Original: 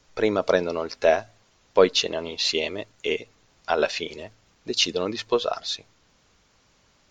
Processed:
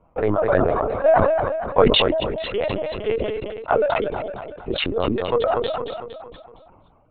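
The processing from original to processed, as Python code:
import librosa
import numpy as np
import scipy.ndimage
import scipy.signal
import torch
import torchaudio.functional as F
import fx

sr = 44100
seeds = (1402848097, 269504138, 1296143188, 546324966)

p1 = fx.wiener(x, sr, points=25)
p2 = fx.highpass(p1, sr, hz=220.0, slope=6)
p3 = fx.dereverb_blind(p2, sr, rt60_s=1.1)
p4 = scipy.signal.sosfilt(scipy.signal.butter(2, 1100.0, 'lowpass', fs=sr, output='sos'), p3)
p5 = fx.peak_eq(p4, sr, hz=350.0, db=-10.5, octaves=1.5)
p6 = fx.over_compress(p5, sr, threshold_db=-38.0, ratio=-1.0)
p7 = p5 + (p6 * 10.0 ** (-3.0 / 20.0))
p8 = fx.echo_feedback(p7, sr, ms=231, feedback_pct=51, wet_db=-11.0)
p9 = fx.lpc_vocoder(p8, sr, seeds[0], excitation='pitch_kept', order=16)
p10 = fx.sustainer(p9, sr, db_per_s=26.0)
y = p10 * 10.0 ** (8.5 / 20.0)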